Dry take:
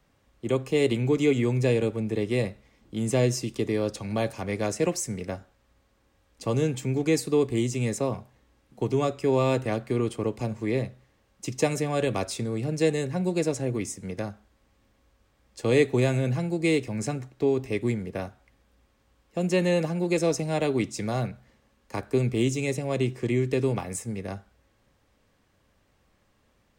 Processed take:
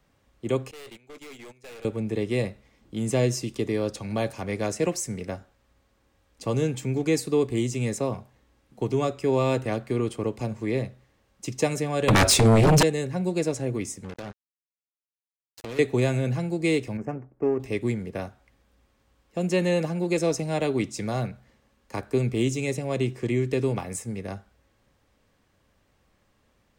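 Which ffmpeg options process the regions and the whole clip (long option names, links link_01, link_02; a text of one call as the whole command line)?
ffmpeg -i in.wav -filter_complex "[0:a]asettb=1/sr,asplit=3[link_01][link_02][link_03];[link_01]atrim=end=0.714[link_04];[link_02]atrim=start=0.71:end=1.85,asetpts=PTS-STARTPTS,afade=type=in:duration=0.004:curve=qsin,afade=type=out:start_time=1.136:duration=0.004:curve=qsin,highpass=frequency=1100:poles=1,agate=range=-19dB:threshold=-37dB:ratio=16:release=100:detection=peak,aeval=exprs='(tanh(126*val(0)+0.3)-tanh(0.3))/126':channel_layout=same[link_05];[link_03]atrim=start=1.846[link_06];[link_04][link_05]acrossfade=duration=0.004:curve1=hsin:curve2=qsin[link_07];[link_07][link_06]acrossfade=duration=0.004:curve1=qsin:curve2=hsin,asettb=1/sr,asplit=3[link_08][link_09][link_10];[link_08]atrim=end=12.084[link_11];[link_09]atrim=start=12.08:end=12.83,asetpts=PTS-STARTPTS,afade=type=in:duration=0.004:curve=qsin,afade=type=out:start_time=0.746:duration=0.004:curve=qsin,asubboost=boost=9:cutoff=160,aeval=exprs='0.211*sin(PI/2*5.01*val(0)/0.211)':channel_layout=same[link_12];[link_10]atrim=start=12.826[link_13];[link_11][link_12]acrossfade=duration=0.004:curve1=hsin:curve2=qsin[link_14];[link_14][link_13]acrossfade=duration=0.004:curve1=qsin:curve2=hsin,asettb=1/sr,asplit=3[link_15][link_16][link_17];[link_15]atrim=end=14.044[link_18];[link_16]atrim=start=14.04:end=15.79,asetpts=PTS-STARTPTS,afade=type=in:duration=0.004:curve=qsin,afade=type=out:start_time=1.746:duration=0.004:curve=qsin,acompressor=threshold=-33dB:ratio=5:attack=3.2:release=140:knee=1:detection=peak,lowpass=8000,acrusher=bits=5:mix=0:aa=0.5[link_19];[link_17]atrim=start=15.786[link_20];[link_18][link_19]acrossfade=duration=0.004:curve1=hsin:curve2=qsin[link_21];[link_21][link_20]acrossfade=duration=0.004:curve1=qsin:curve2=hsin,asettb=1/sr,asplit=3[link_22][link_23][link_24];[link_22]atrim=end=16.974[link_25];[link_23]atrim=start=16.97:end=17.6,asetpts=PTS-STARTPTS,afade=type=in:duration=0.004:curve=qsin,afade=type=out:start_time=0.626:duration=0.004:curve=qsin,equalizer=frequency=93:width=1.1:gain=-8.5,adynamicsmooth=sensitivity=3.5:basefreq=730,asuperstop=centerf=3800:order=4:qfactor=1.3[link_26];[link_24]atrim=start=17.596[link_27];[link_25][link_26]acrossfade=duration=0.004:curve1=hsin:curve2=qsin[link_28];[link_28][link_27]acrossfade=duration=0.004:curve1=qsin:curve2=hsin" out.wav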